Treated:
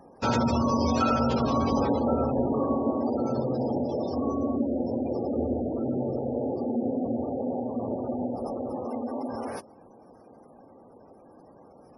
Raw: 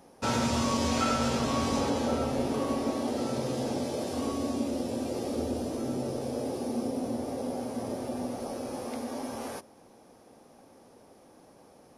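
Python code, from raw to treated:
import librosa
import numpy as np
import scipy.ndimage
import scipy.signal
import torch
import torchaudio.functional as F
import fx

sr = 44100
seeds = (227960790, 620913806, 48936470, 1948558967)

y = fx.spec_gate(x, sr, threshold_db=-20, keep='strong')
y = y * 10.0 ** (4.0 / 20.0)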